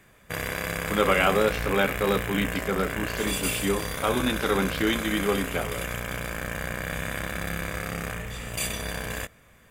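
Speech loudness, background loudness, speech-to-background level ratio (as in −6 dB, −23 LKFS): −26.5 LKFS, −31.0 LKFS, 4.5 dB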